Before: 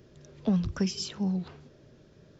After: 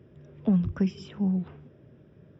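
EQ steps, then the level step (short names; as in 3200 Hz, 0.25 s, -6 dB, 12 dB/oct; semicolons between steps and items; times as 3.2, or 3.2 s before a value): polynomial smoothing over 25 samples; HPF 75 Hz; low shelf 360 Hz +8 dB; -3.0 dB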